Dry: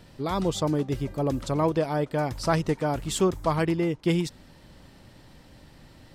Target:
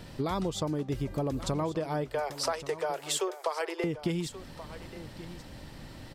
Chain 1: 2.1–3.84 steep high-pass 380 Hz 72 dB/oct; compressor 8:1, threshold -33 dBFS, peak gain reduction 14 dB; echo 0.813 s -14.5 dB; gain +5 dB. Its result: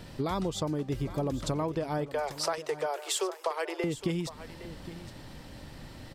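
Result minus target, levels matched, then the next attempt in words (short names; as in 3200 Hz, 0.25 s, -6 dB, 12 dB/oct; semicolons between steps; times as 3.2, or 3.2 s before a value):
echo 0.318 s early
2.1–3.84 steep high-pass 380 Hz 72 dB/oct; compressor 8:1, threshold -33 dBFS, peak gain reduction 14 dB; echo 1.131 s -14.5 dB; gain +5 dB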